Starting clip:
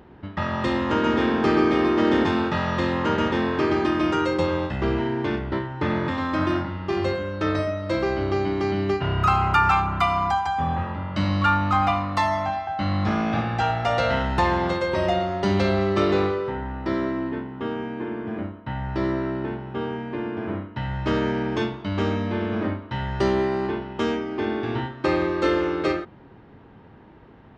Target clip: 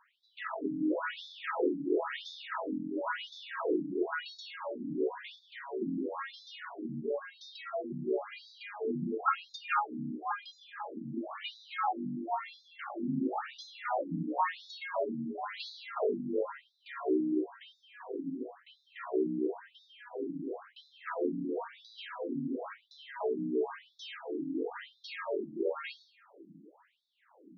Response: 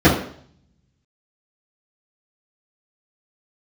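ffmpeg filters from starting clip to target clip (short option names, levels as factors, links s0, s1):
-filter_complex "[0:a]acrossover=split=360|3000[s0][s1][s2];[s0]acompressor=threshold=0.0562:ratio=6[s3];[s3][s1][s2]amix=inputs=3:normalize=0,afreqshift=48,asplit=2[s4][s5];[1:a]atrim=start_sample=2205,adelay=150[s6];[s5][s6]afir=irnorm=-1:irlink=0,volume=0.0188[s7];[s4][s7]amix=inputs=2:normalize=0,afftfilt=real='re*between(b*sr/1024,220*pow(4900/220,0.5+0.5*sin(2*PI*0.97*pts/sr))/1.41,220*pow(4900/220,0.5+0.5*sin(2*PI*0.97*pts/sr))*1.41)':imag='im*between(b*sr/1024,220*pow(4900/220,0.5+0.5*sin(2*PI*0.97*pts/sr))/1.41,220*pow(4900/220,0.5+0.5*sin(2*PI*0.97*pts/sr))*1.41)':win_size=1024:overlap=0.75,volume=0.501"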